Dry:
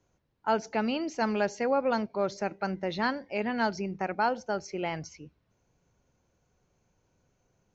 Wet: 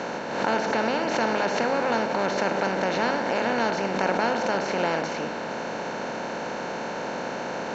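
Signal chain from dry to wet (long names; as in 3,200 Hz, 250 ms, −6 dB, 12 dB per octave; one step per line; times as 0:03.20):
compressor on every frequency bin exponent 0.2
hum removal 51.97 Hz, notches 29
background raised ahead of every attack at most 47 dB per second
level −3.5 dB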